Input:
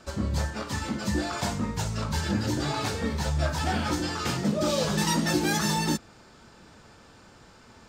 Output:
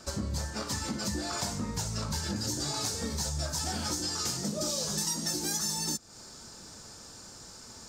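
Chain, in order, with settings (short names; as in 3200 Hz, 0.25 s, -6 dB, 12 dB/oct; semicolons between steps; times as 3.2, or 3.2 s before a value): resonant high shelf 4000 Hz +7 dB, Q 1.5, from 2.36 s +12.5 dB; compressor 6:1, threshold -30 dBFS, peak gain reduction 15.5 dB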